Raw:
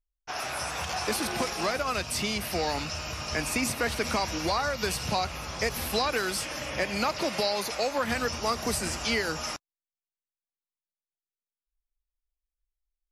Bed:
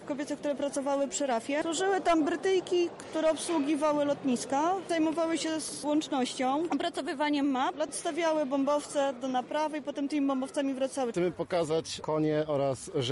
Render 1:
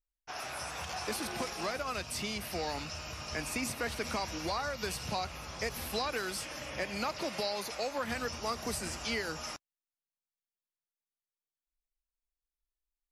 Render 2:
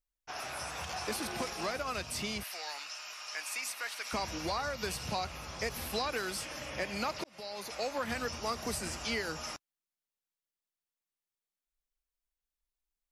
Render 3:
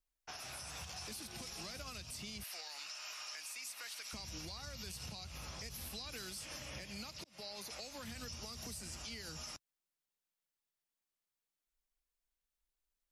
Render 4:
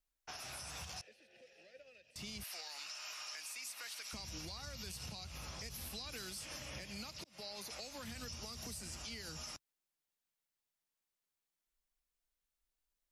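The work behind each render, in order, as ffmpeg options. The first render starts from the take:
-af "volume=-7dB"
-filter_complex "[0:a]asettb=1/sr,asplit=3[a][b][c];[a]atrim=end=2.434[d];[b]atrim=start=2.43:end=4.13,asetpts=PTS-STARTPTS,afade=t=in:d=0.004:c=qsin,afade=t=out:st=1.696:d=0.004:c=qsin,highpass=1.1k[e];[c]atrim=start=4.126[f];[d][e]acrossfade=d=0.004:c1=hsin:c2=qsin[g];[g][f]acrossfade=d=0.004:c1=qsin:c2=hsin,asplit=2[h][i];[h]atrim=end=7.24,asetpts=PTS-STARTPTS,afade=t=out:st=7.236:d=0.004:c=hsin[j];[i]atrim=start=7.24,asetpts=PTS-STARTPTS,afade=t=in:d=0.6[k];[j][k]concat=n=2:v=0:a=1"
-filter_complex "[0:a]acrossover=split=200|3000[a][b][c];[b]acompressor=threshold=-50dB:ratio=5[d];[a][d][c]amix=inputs=3:normalize=0,alimiter=level_in=12.5dB:limit=-24dB:level=0:latency=1:release=142,volume=-12.5dB"
-filter_complex "[0:a]asettb=1/sr,asplit=3[a][b][c];[a]atrim=end=1.014[d];[b]atrim=start=1.01:end=2.16,asetpts=PTS-STARTPTS,afade=t=in:d=0.004:c=qsin,afade=t=out:st=1.146:d=0.004:c=qsin,asplit=3[e][f][g];[e]bandpass=f=530:t=q:w=8,volume=0dB[h];[f]bandpass=f=1.84k:t=q:w=8,volume=-6dB[i];[g]bandpass=f=2.48k:t=q:w=8,volume=-9dB[j];[h][i][j]amix=inputs=3:normalize=0[k];[c]atrim=start=2.156[l];[d][k]acrossfade=d=0.004:c1=hsin:c2=qsin[m];[m][l]acrossfade=d=0.004:c1=qsin:c2=hsin"

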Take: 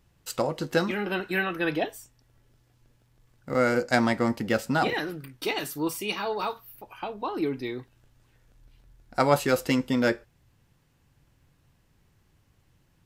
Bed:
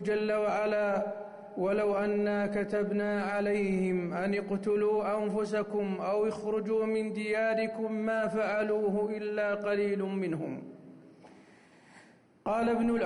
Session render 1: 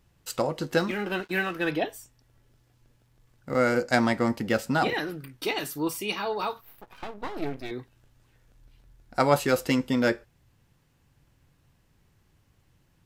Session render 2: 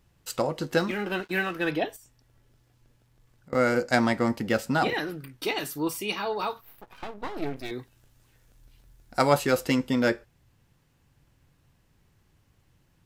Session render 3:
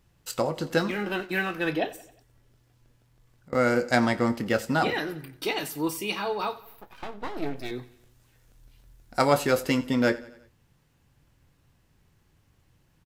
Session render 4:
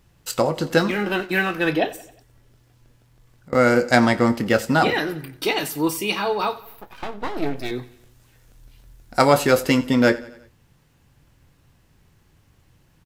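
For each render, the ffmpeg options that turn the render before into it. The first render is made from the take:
-filter_complex "[0:a]asettb=1/sr,asplit=3[a][b][c];[a]atrim=end=0.794[d];[b]atrim=start=0.79:end=1.71,asetpts=PTS-STARTPTS,afade=t=in:d=0.004:c=qsin,afade=t=out:st=0.916:d=0.004:c=qsin,aeval=exprs='sgn(val(0))*max(abs(val(0))-0.00422,0)':c=same[e];[c]atrim=start=1.706[f];[d][e]acrossfade=d=0.004:c1=hsin:c2=qsin[g];[g][f]acrossfade=d=0.004:c1=qsin:c2=hsin,asettb=1/sr,asplit=3[h][i][j];[h]atrim=end=6.614[k];[i]atrim=start=6.61:end=7.71,asetpts=PTS-STARTPTS,afade=t=in:d=0.004:c=qsin,afade=t=out:st=1.096:d=0.004:c=qsin,aeval=exprs='max(val(0),0)':c=same[l];[j]atrim=start=7.706[m];[k][l]acrossfade=d=0.004:c1=hsin:c2=qsin[n];[n][m]acrossfade=d=0.004:c1=qsin:c2=hsin"
-filter_complex "[0:a]asettb=1/sr,asplit=3[a][b][c];[a]atrim=end=1.964[d];[b]atrim=start=1.96:end=3.53,asetpts=PTS-STARTPTS,afade=t=in:d=0.004:c=qsin,afade=t=out:st=1.566:d=0.004:c=qsin,acompressor=threshold=-49dB:ratio=6:attack=3.2:release=140:knee=1:detection=peak[e];[c]atrim=start=3.526[f];[d][e]acrossfade=d=0.004:c1=hsin:c2=qsin[g];[g][f]acrossfade=d=0.004:c1=qsin:c2=hsin,asettb=1/sr,asplit=3[h][i][j];[h]atrim=end=7.564[k];[i]atrim=start=7.56:end=9.33,asetpts=PTS-STARTPTS,afade=t=in:d=0.004:c=qsin,afade=t=out:st=1.766:d=0.004:c=qsin,highshelf=f=5k:g=8[l];[j]atrim=start=9.326[m];[k][l]acrossfade=d=0.004:c1=hsin:c2=qsin[n];[n][m]acrossfade=d=0.004:c1=qsin:c2=hsin"
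-filter_complex "[0:a]asplit=2[a][b];[b]adelay=25,volume=-13.5dB[c];[a][c]amix=inputs=2:normalize=0,aecho=1:1:89|178|267|356:0.112|0.0583|0.0303|0.0158"
-af "volume=6.5dB,alimiter=limit=-1dB:level=0:latency=1"

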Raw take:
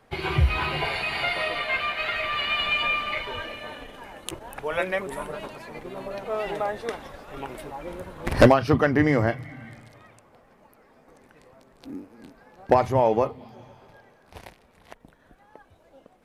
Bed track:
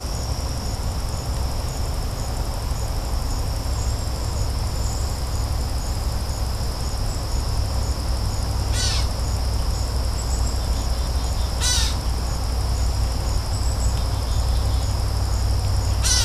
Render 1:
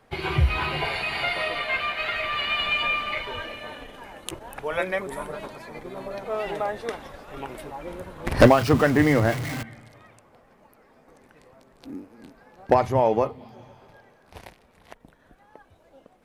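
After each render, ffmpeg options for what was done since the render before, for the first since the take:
-filter_complex "[0:a]asettb=1/sr,asplit=3[a][b][c];[a]atrim=end=4.704[d];[b]atrim=start=4.7:end=6.31,asetpts=PTS-STARTPTS,afade=t=in:d=0.004:c=qsin,afade=t=out:st=1.606:d=0.004:c=qsin,bandreject=f=2.8k:w=9.5[e];[c]atrim=start=6.306[f];[d][e]acrossfade=d=0.004:c1=hsin:c2=qsin[g];[g][f]acrossfade=d=0.004:c1=qsin:c2=hsin,asettb=1/sr,asplit=3[h][i][j];[h]atrim=end=8.404[k];[i]atrim=start=8.4:end=9.63,asetpts=PTS-STARTPTS,afade=t=in:d=0.004:c=qsin,afade=t=out:st=1.226:d=0.004:c=qsin,aeval=exprs='val(0)+0.5*0.0447*sgn(val(0))':c=same[l];[j]atrim=start=9.626[m];[k][l]acrossfade=d=0.004:c1=hsin:c2=qsin[n];[n][m]acrossfade=d=0.004:c1=qsin:c2=hsin"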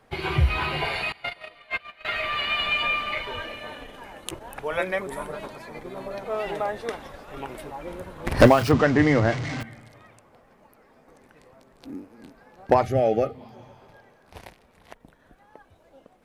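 -filter_complex "[0:a]asettb=1/sr,asplit=3[a][b][c];[a]atrim=end=1.124[d];[b]atrim=start=1.12:end=2.05,asetpts=PTS-STARTPTS,afade=t=in:d=0.004:c=qsin,afade=t=out:st=0.926:d=0.004:c=qsin,agate=range=-23dB:threshold=-25dB:ratio=16:release=100:detection=peak[e];[c]atrim=start=2.046[f];[d][e]acrossfade=d=0.004:c1=hsin:c2=qsin[g];[g][f]acrossfade=d=0.004:c1=qsin:c2=hsin,asplit=3[h][i][j];[h]afade=t=out:st=8.71:d=0.02[k];[i]lowpass=f=6.6k:w=0.5412,lowpass=f=6.6k:w=1.3066,afade=t=in:st=8.71:d=0.02,afade=t=out:st=9.6:d=0.02[l];[j]afade=t=in:st=9.6:d=0.02[m];[k][l][m]amix=inputs=3:normalize=0,asettb=1/sr,asplit=3[n][o][p];[n]atrim=end=12.834[q];[o]atrim=start=12.83:end=13.35,asetpts=PTS-STARTPTS,afade=t=in:d=0.004:c=qsin,afade=t=out:st=0.516:d=0.004:c=qsin,asuperstop=centerf=980:order=12:qfactor=2.7[r];[p]atrim=start=13.346[s];[q][r]acrossfade=d=0.004:c1=hsin:c2=qsin[t];[t][s]acrossfade=d=0.004:c1=qsin:c2=hsin"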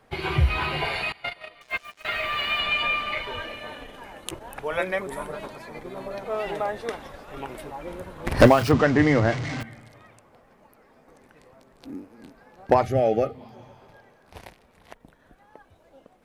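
-filter_complex "[0:a]asettb=1/sr,asplit=3[a][b][c];[a]atrim=end=1.614[d];[b]atrim=start=1.61:end=2.6,asetpts=PTS-STARTPTS,afade=t=in:d=0.004:c=qsin,afade=t=out:st=0.986:d=0.004:c=qsin,acrusher=bits=7:mix=0:aa=0.5[e];[c]atrim=start=2.596[f];[d][e]acrossfade=d=0.004:c1=hsin:c2=qsin[g];[g][f]acrossfade=d=0.004:c1=qsin:c2=hsin"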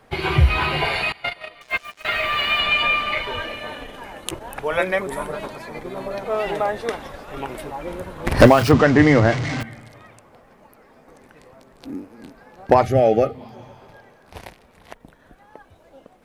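-af "volume=5.5dB,alimiter=limit=-3dB:level=0:latency=1"

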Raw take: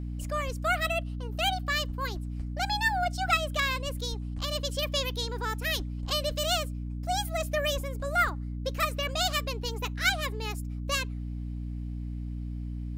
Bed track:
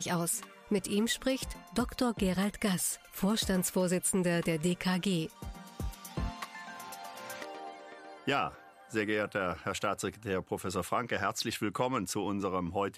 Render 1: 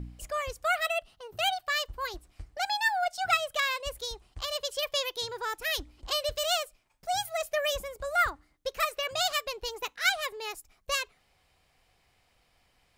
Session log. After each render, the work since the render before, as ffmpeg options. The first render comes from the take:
-af "bandreject=f=60:t=h:w=4,bandreject=f=120:t=h:w=4,bandreject=f=180:t=h:w=4,bandreject=f=240:t=h:w=4,bandreject=f=300:t=h:w=4"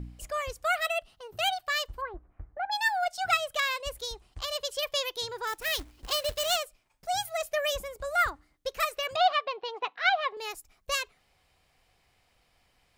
-filter_complex "[0:a]asplit=3[a][b][c];[a]afade=t=out:st=2:d=0.02[d];[b]lowpass=f=1.6k:w=0.5412,lowpass=f=1.6k:w=1.3066,afade=t=in:st=2:d=0.02,afade=t=out:st=2.71:d=0.02[e];[c]afade=t=in:st=2.71:d=0.02[f];[d][e][f]amix=inputs=3:normalize=0,asettb=1/sr,asplit=3[g][h][i];[g]atrim=end=5.474[j];[h]atrim=start=5.47:end=6.57,asetpts=PTS-STARTPTS,afade=t=in:d=0.004:c=qsin,afade=t=out:st=1.096:d=0.004:c=qsin,acrusher=bits=2:mode=log:mix=0:aa=0.000001[k];[i]atrim=start=6.566[l];[j][k]acrossfade=d=0.004:c1=hsin:c2=qsin[m];[m][l]acrossfade=d=0.004:c1=qsin:c2=hsin,asettb=1/sr,asplit=3[n][o][p];[n]atrim=end=9.164[q];[o]atrim=start=9.16:end=10.37,asetpts=PTS-STARTPTS,afade=t=in:d=0.004:c=qsin,afade=t=out:st=1.206:d=0.004:c=qsin,highpass=f=170:w=0.5412,highpass=f=170:w=1.3066,equalizer=f=220:t=q:w=4:g=-7,equalizer=f=740:t=q:w=4:g=10,equalizer=f=1.1k:t=q:w=4:g=7,lowpass=f=3.8k:w=0.5412,lowpass=f=3.8k:w=1.3066[r];[p]atrim=start=10.366[s];[q][r]acrossfade=d=0.004:c1=hsin:c2=qsin[t];[t][s]acrossfade=d=0.004:c1=qsin:c2=hsin"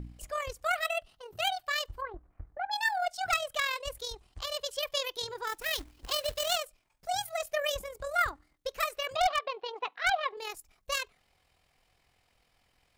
-af "tremolo=f=42:d=0.519,aeval=exprs='0.119*(abs(mod(val(0)/0.119+3,4)-2)-1)':c=same"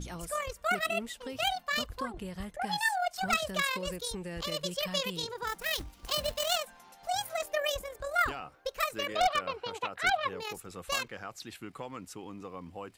-filter_complex "[1:a]volume=-10.5dB[a];[0:a][a]amix=inputs=2:normalize=0"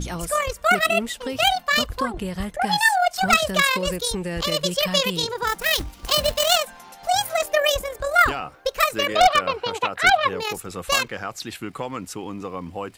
-af "volume=11.5dB"

